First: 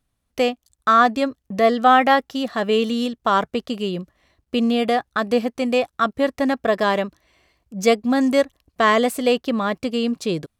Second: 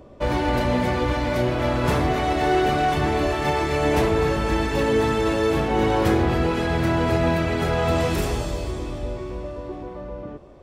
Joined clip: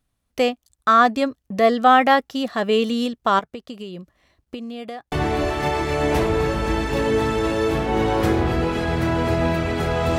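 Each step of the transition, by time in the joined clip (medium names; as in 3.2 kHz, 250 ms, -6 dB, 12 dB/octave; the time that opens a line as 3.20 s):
first
3.39–5.12 s: compression 12:1, threshold -30 dBFS
5.12 s: go over to second from 2.94 s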